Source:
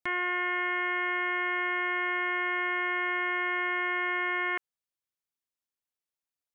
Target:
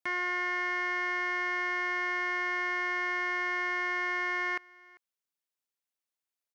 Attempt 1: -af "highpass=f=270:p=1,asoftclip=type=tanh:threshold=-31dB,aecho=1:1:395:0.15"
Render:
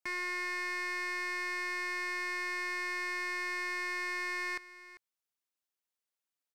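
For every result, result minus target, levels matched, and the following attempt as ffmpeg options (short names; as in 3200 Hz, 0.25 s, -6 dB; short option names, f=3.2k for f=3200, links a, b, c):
soft clip: distortion +13 dB; echo-to-direct +8 dB
-af "highpass=f=270:p=1,asoftclip=type=tanh:threshold=-20.5dB,aecho=1:1:395:0.15"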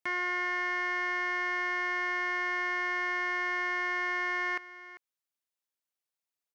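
echo-to-direct +8 dB
-af "highpass=f=270:p=1,asoftclip=type=tanh:threshold=-20.5dB,aecho=1:1:395:0.0596"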